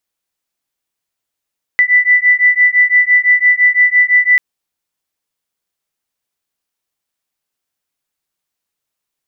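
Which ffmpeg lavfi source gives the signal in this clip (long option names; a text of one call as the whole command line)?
ffmpeg -f lavfi -i "aevalsrc='0.299*(sin(2*PI*1980*t)+sin(2*PI*1985.9*t))':duration=2.59:sample_rate=44100" out.wav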